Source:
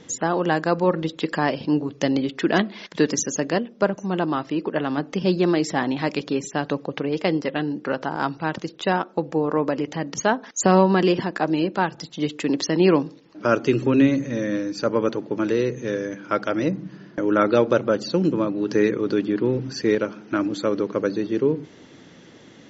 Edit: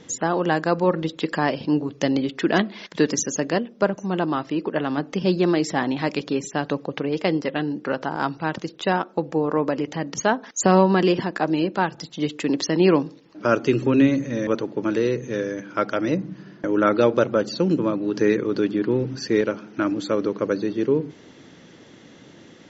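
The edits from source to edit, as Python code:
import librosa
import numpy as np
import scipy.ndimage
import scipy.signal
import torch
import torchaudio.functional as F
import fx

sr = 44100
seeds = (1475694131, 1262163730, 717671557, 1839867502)

y = fx.edit(x, sr, fx.cut(start_s=14.47, length_s=0.54), tone=tone)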